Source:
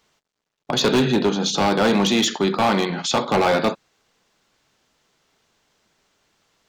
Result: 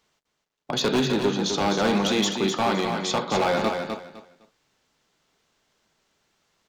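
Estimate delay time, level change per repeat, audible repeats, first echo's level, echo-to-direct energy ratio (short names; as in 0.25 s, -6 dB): 0.255 s, -13.0 dB, 3, -6.0 dB, -6.0 dB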